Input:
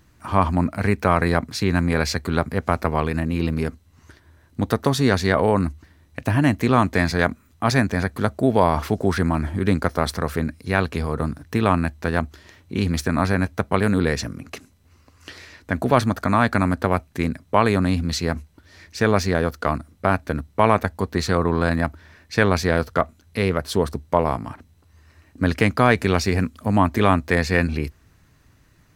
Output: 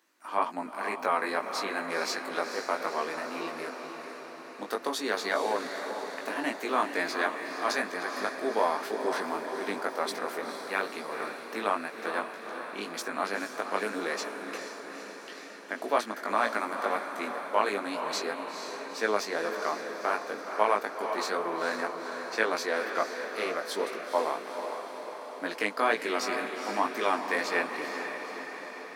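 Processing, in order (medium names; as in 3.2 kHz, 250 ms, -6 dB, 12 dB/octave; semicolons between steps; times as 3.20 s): chorus 2 Hz, delay 17.5 ms, depth 2.6 ms; Bessel high-pass 460 Hz, order 6; echo that smears into a reverb 470 ms, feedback 64%, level -7 dB; trim -4 dB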